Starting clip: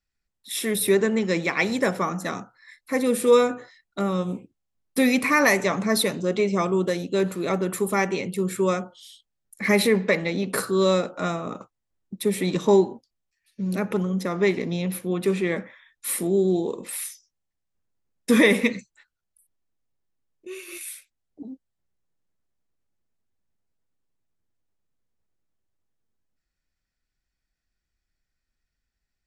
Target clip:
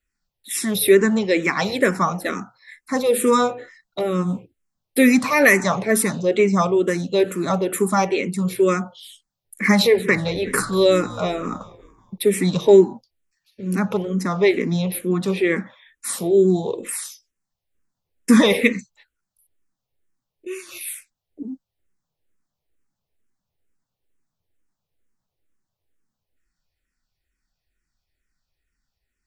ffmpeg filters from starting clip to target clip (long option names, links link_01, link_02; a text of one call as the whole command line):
ffmpeg -i in.wav -filter_complex "[0:a]asettb=1/sr,asplit=3[link_01][link_02][link_03];[link_01]atrim=end=9.794[link_04];[link_02]atrim=start=9.79:end=12.18,asetpts=PTS-STARTPTS,afade=type=in:duration=0.004:curve=qsin,afade=type=out:start_time=2.386:duration=0.004:curve=qsin,asplit=5[link_05][link_06][link_07][link_08][link_09];[link_06]adelay=188,afreqshift=-72,volume=-16.5dB[link_10];[link_07]adelay=376,afreqshift=-144,volume=-23.8dB[link_11];[link_08]adelay=564,afreqshift=-216,volume=-31.2dB[link_12];[link_09]adelay=752,afreqshift=-288,volume=-38.5dB[link_13];[link_05][link_10][link_11][link_12][link_13]amix=inputs=5:normalize=0,atrim=end_sample=105399[link_14];[link_03]atrim=start=12.176[link_15];[link_04][link_14]acrossfade=duration=0.004:curve1=hsin:curve2=qsin[link_16];[link_16][link_15]acrossfade=duration=0.004:curve1=qsin:curve2=hsin,asplit=2[link_17][link_18];[link_18]afreqshift=-2.2[link_19];[link_17][link_19]amix=inputs=2:normalize=1,volume=7dB" out.wav